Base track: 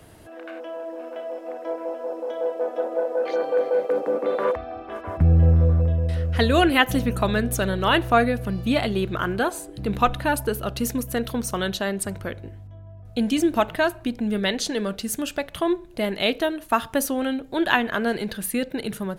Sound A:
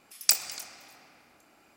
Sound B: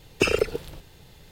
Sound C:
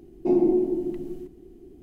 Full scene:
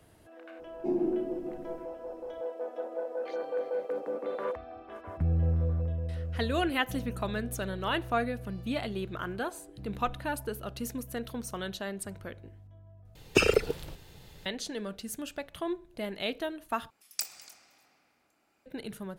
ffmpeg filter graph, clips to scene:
ffmpeg -i bed.wav -i cue0.wav -i cue1.wav -i cue2.wav -filter_complex "[0:a]volume=-11dB,asplit=3[link_01][link_02][link_03];[link_01]atrim=end=13.154[link_04];[2:a]atrim=end=1.31,asetpts=PTS-STARTPTS,volume=-1.5dB[link_05];[link_02]atrim=start=14.456:end=16.904[link_06];[1:a]atrim=end=1.76,asetpts=PTS-STARTPTS,volume=-11.5dB[link_07];[link_03]atrim=start=18.656[link_08];[3:a]atrim=end=1.82,asetpts=PTS-STARTPTS,volume=-9dB,afade=type=in:duration=0.004:curve=hsin,afade=type=out:start_time=1.816:duration=0.004:curve=hsin,adelay=590[link_09];[link_04][link_05]acrossfade=duration=0.004:curve1=hsin:curve2=hsin[link_10];[link_10][link_06]acrossfade=duration=0.004:curve1=hsin:curve2=hsin[link_11];[link_11][link_07]acrossfade=duration=0.004:curve1=hsin:curve2=hsin[link_12];[link_12][link_08]acrossfade=duration=0.004:curve1=hsin:curve2=hsin[link_13];[link_13][link_09]amix=inputs=2:normalize=0" out.wav

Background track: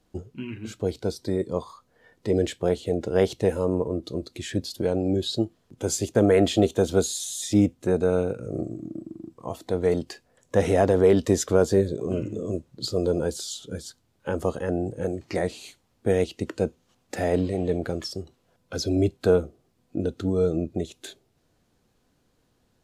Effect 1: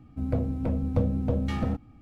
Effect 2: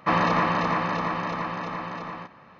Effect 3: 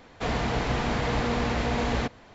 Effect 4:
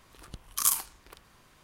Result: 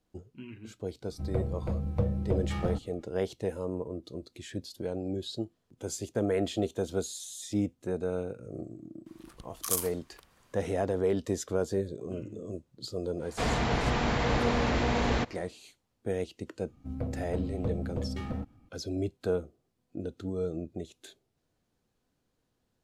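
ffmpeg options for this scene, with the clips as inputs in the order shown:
ffmpeg -i bed.wav -i cue0.wav -i cue1.wav -i cue2.wav -i cue3.wav -filter_complex "[1:a]asplit=2[link_01][link_02];[0:a]volume=-10dB[link_03];[link_01]bandreject=frequency=260:width=5.1,atrim=end=2.01,asetpts=PTS-STARTPTS,volume=-3dB,afade=type=in:duration=0.004:curve=hsin,afade=type=out:start_time=2.006:duration=0.004:curve=hsin,adelay=1020[link_04];[4:a]atrim=end=1.63,asetpts=PTS-STARTPTS,volume=-5.5dB,afade=type=in:duration=0.004:curve=hsin,afade=type=out:start_time=1.626:duration=0.004:curve=hsin,adelay=399546S[link_05];[3:a]atrim=end=2.34,asetpts=PTS-STARTPTS,volume=-1dB,afade=type=in:duration=0.1,afade=type=out:start_time=2.24:duration=0.1,adelay=13170[link_06];[link_02]atrim=end=2.01,asetpts=PTS-STARTPTS,volume=-7.5dB,afade=type=in:duration=0.004:curve=hsin,afade=type=out:start_time=2.006:duration=0.004:curve=hsin,adelay=735588S[link_07];[link_03][link_04][link_05][link_06][link_07]amix=inputs=5:normalize=0" out.wav

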